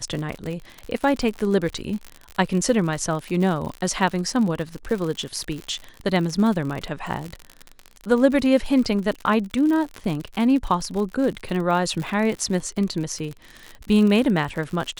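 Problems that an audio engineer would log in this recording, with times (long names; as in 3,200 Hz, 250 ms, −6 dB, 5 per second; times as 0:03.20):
surface crackle 69 per second −27 dBFS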